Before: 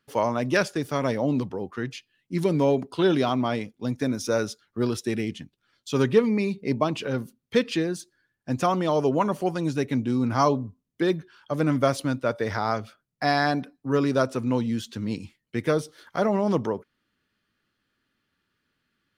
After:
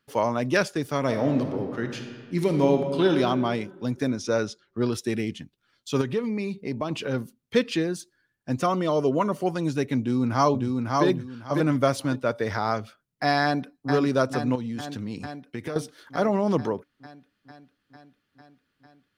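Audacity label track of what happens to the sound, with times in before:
1.030000	3.100000	thrown reverb, RT60 1.8 s, DRR 4.5 dB
4.100000	4.930000	low-pass filter 6,200 Hz
6.010000	6.910000	downward compressor 2 to 1, threshold −28 dBFS
8.590000	9.430000	notch comb filter 830 Hz
9.990000	11.050000	delay throw 550 ms, feedback 25%, level −3 dB
13.430000	13.910000	delay throw 450 ms, feedback 75%, level −5 dB
14.550000	15.760000	downward compressor, threshold −28 dBFS

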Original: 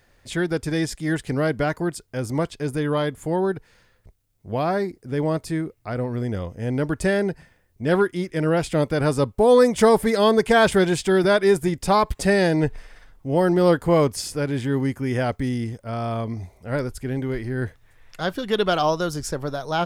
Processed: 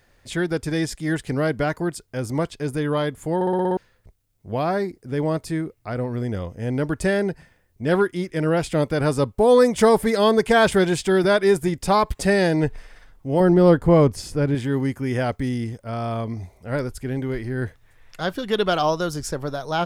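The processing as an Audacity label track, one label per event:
3.350000	3.350000	stutter in place 0.06 s, 7 plays
13.400000	14.550000	spectral tilt −2 dB per octave

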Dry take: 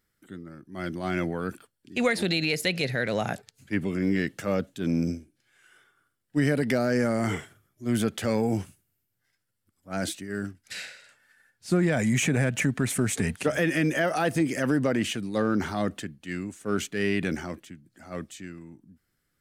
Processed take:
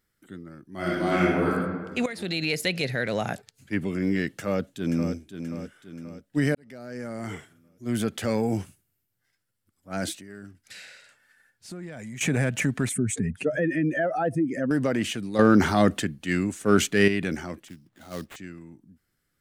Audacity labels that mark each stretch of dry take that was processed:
0.750000	1.500000	thrown reverb, RT60 1.5 s, DRR −6.5 dB
2.060000	2.500000	fade in, from −14 dB
4.320000	5.140000	delay throw 530 ms, feedback 50%, level −8.5 dB
6.550000	8.220000	fade in
10.170000	12.210000	downward compressor 2.5 to 1, threshold −43 dBFS
12.890000	14.710000	expanding power law on the bin magnitudes exponent 1.8
15.390000	17.080000	clip gain +8 dB
17.680000	18.360000	sample-rate reduction 5,200 Hz, jitter 20%

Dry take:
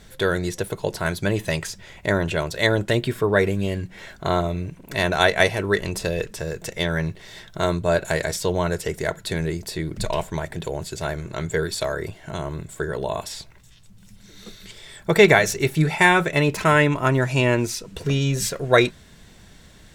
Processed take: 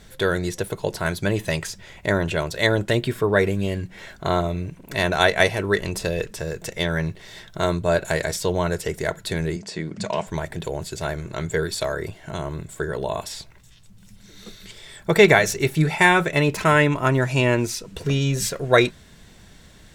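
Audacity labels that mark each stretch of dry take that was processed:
9.560000	10.270000	loudspeaker in its box 170–7,600 Hz, peaks and dips at 200 Hz +8 dB, 340 Hz −4 dB, 3,800 Hz −5 dB

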